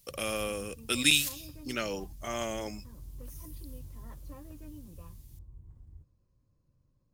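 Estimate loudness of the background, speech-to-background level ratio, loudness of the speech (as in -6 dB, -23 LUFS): -49.5 LUFS, 19.0 dB, -30.5 LUFS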